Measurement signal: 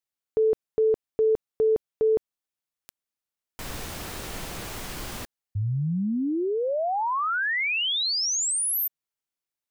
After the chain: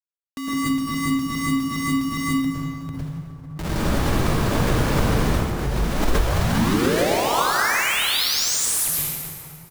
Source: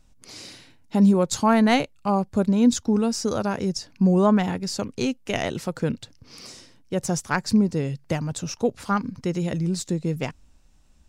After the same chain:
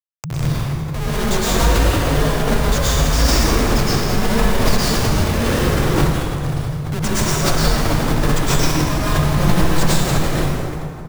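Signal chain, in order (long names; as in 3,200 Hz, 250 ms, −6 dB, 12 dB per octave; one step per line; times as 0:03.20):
high-pass filter 140 Hz 12 dB per octave
in parallel at −2.5 dB: compressor whose output falls as the input rises −23 dBFS, ratio −0.5
on the sum: harmonic generator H 5 −32 dB, 7 −21 dB, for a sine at −3.5 dBFS
on a send: single-tap delay 432 ms −20.5 dB
on the sum: comparator with hysteresis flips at −32 dBFS
dense smooth reverb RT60 2.6 s, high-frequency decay 0.6×, pre-delay 95 ms, DRR −9 dB
frequency shifter −170 Hz
background raised ahead of every attack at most 54 dB per second
level −2.5 dB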